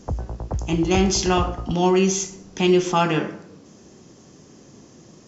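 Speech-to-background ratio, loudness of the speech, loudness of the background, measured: 10.0 dB, -21.0 LUFS, -31.0 LUFS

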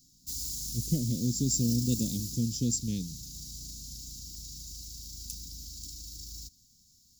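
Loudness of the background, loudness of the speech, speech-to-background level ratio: -38.5 LUFS, -30.5 LUFS, 8.0 dB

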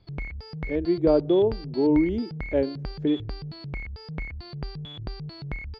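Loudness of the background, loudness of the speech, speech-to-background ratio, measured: -37.0 LUFS, -24.5 LUFS, 12.5 dB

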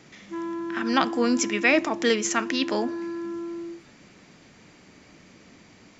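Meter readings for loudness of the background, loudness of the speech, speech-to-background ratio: -33.5 LUFS, -24.5 LUFS, 9.0 dB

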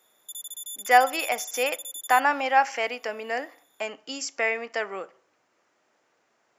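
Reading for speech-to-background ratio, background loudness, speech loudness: 10.5 dB, -36.0 LUFS, -25.5 LUFS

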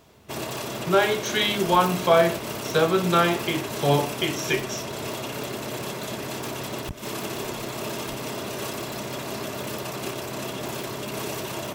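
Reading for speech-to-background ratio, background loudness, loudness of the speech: 8.5 dB, -31.5 LUFS, -23.0 LUFS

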